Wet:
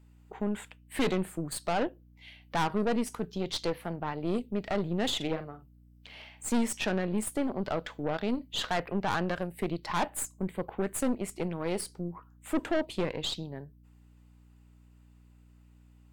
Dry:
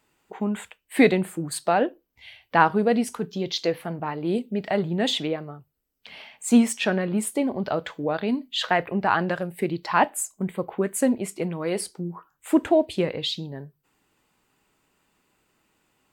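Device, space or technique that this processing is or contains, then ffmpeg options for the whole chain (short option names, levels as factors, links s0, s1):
valve amplifier with mains hum: -filter_complex "[0:a]highpass=94,asettb=1/sr,asplit=3[s0][s1][s2];[s0]atrim=end=5.164[s3];[s1]atrim=start=5.16:end=6.49,asetpts=PTS-STARTPTS,afade=t=in:d=0.004:c=qsin,afade=t=out:st=1.326:d=0.004:c=qsin,asplit=2[s4][s5];[s5]adelay=44,volume=0.355[s6];[s4][s6]amix=inputs=2:normalize=0,atrim=end_sample=58653[s7];[s2]atrim=start=6.486[s8];[s3][s7]acrossfade=d=0.004:c1=hsin:c2=qsin[s9];[s9][s8]acrossfade=d=0.004:c1=qsin:c2=hsin,aeval=exprs='(tanh(12.6*val(0)+0.7)-tanh(0.7))/12.6':c=same,aeval=exprs='val(0)+0.002*(sin(2*PI*60*n/s)+sin(2*PI*2*60*n/s)/2+sin(2*PI*3*60*n/s)/3+sin(2*PI*4*60*n/s)/4+sin(2*PI*5*60*n/s)/5)':c=same,volume=0.794"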